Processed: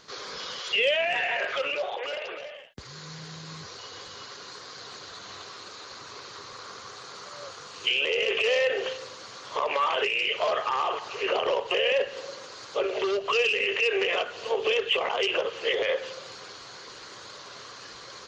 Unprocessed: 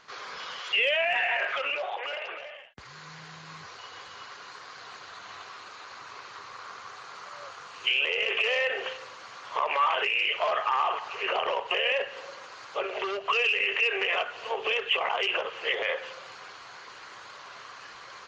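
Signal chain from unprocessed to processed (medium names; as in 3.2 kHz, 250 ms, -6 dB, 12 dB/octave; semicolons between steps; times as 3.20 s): high-order bell 1.4 kHz -9 dB 2.4 oct; trim +7.5 dB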